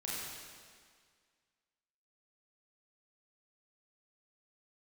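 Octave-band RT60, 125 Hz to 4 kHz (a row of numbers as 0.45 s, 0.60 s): 1.8 s, 1.9 s, 1.9 s, 1.9 s, 1.9 s, 1.8 s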